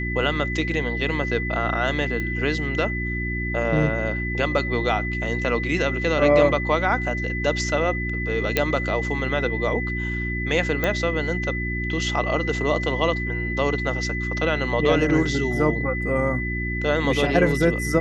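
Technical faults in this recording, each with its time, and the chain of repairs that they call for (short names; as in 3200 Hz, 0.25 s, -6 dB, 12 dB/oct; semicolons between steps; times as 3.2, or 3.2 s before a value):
hum 60 Hz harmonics 6 -28 dBFS
tone 2000 Hz -28 dBFS
2.2 pop -17 dBFS
8.57 pop -5 dBFS
10.84 pop -9 dBFS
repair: de-click; notch 2000 Hz, Q 30; de-hum 60 Hz, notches 6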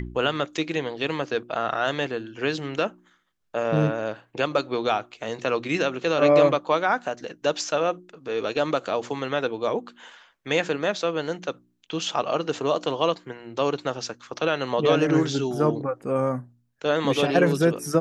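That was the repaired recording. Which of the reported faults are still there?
none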